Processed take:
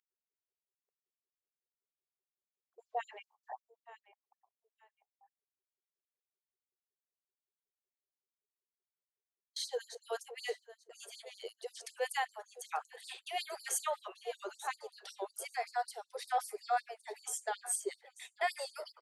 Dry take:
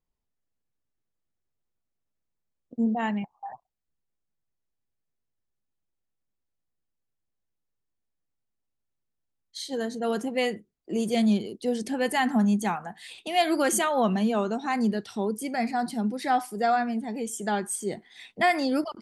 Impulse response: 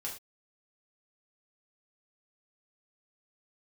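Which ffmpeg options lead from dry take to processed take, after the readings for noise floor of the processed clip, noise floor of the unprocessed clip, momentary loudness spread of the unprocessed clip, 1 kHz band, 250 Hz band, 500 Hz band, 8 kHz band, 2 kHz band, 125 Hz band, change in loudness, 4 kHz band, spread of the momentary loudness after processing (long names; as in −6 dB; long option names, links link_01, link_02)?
below −85 dBFS, −81 dBFS, 13 LU, −10.5 dB, below −35 dB, −13.0 dB, −5.5 dB, −11.0 dB, below −40 dB, −13.0 dB, −9.0 dB, 15 LU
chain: -af "agate=range=-32dB:threshold=-45dB:ratio=16:detection=peak,lowshelf=frequency=340:gain=11,areverse,acompressor=threshold=-24dB:ratio=8,areverse,aeval=exprs='val(0)+0.00794*(sin(2*PI*50*n/s)+sin(2*PI*2*50*n/s)/2+sin(2*PI*3*50*n/s)/3+sin(2*PI*4*50*n/s)/4+sin(2*PI*5*50*n/s)/5)':channel_layout=same,aecho=1:1:889|1778:0.141|0.0353,afftfilt=real='re*gte(b*sr/1024,370*pow(4300/370,0.5+0.5*sin(2*PI*5.3*pts/sr)))':imag='im*gte(b*sr/1024,370*pow(4300/370,0.5+0.5*sin(2*PI*5.3*pts/sr)))':win_size=1024:overlap=0.75,volume=-2.5dB"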